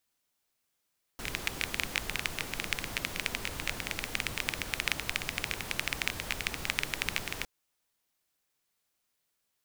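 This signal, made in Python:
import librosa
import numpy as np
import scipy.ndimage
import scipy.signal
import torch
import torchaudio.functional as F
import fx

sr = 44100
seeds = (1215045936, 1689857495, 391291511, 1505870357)

y = fx.rain(sr, seeds[0], length_s=6.26, drops_per_s=14.0, hz=2300.0, bed_db=-3)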